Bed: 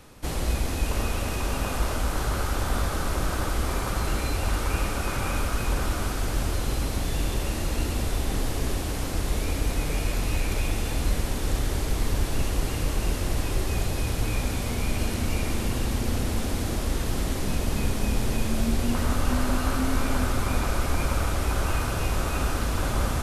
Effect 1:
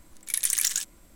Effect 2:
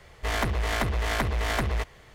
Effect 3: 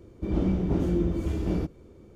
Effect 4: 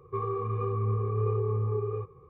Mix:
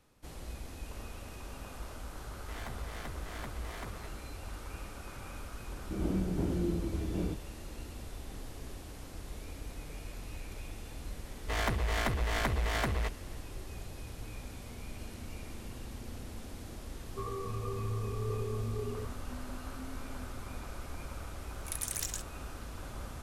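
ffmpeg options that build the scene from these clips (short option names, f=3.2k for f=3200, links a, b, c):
-filter_complex "[2:a]asplit=2[a][b];[0:a]volume=-17.5dB[c];[a]atrim=end=2.14,asetpts=PTS-STARTPTS,volume=-18dB,afade=t=in:d=0.004:c=hsin,afade=t=out:st=2.136:d=0.004:c=hsin,adelay=2240[d];[3:a]atrim=end=2.15,asetpts=PTS-STARTPTS,volume=-7dB,afade=t=in:d=0.004:c=hsin,afade=t=out:st=2.146:d=0.004:c=hsin,adelay=5680[e];[b]atrim=end=2.14,asetpts=PTS-STARTPTS,volume=-5dB,afade=t=in:d=0.004:c=hsin,afade=t=out:st=2.136:d=0.004:c=hsin,adelay=11250[f];[4:a]atrim=end=2.29,asetpts=PTS-STARTPTS,volume=-8dB,afade=t=in:d=0.004:c=hsin,afade=t=out:st=2.286:d=0.004:c=hsin,adelay=17040[g];[1:a]atrim=end=1.15,asetpts=PTS-STARTPTS,volume=-12dB,afade=t=in:d=0.004:c=hsin,afade=t=out:st=1.146:d=0.004:c=hsin,adelay=21380[h];[c][d][e][f][g][h]amix=inputs=6:normalize=0"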